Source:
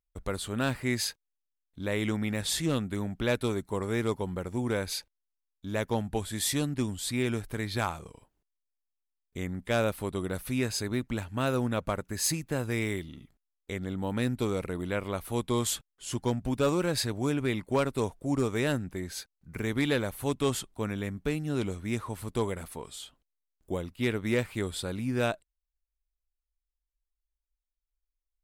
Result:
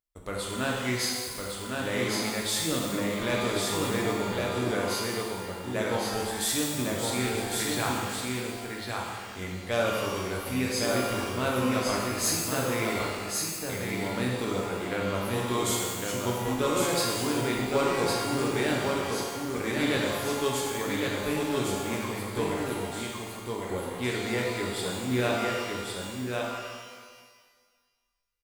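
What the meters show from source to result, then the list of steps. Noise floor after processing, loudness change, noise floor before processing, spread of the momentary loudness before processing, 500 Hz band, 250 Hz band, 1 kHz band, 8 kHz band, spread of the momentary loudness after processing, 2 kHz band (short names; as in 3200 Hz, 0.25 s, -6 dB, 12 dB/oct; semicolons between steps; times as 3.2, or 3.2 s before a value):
-52 dBFS, +2.0 dB, under -85 dBFS, 9 LU, +3.0 dB, +1.0 dB, +6.5 dB, +5.0 dB, 8 LU, +4.5 dB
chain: low shelf 210 Hz -9 dB; echo 1.107 s -3.5 dB; shimmer reverb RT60 1.6 s, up +12 st, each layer -8 dB, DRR -2 dB; gain -1.5 dB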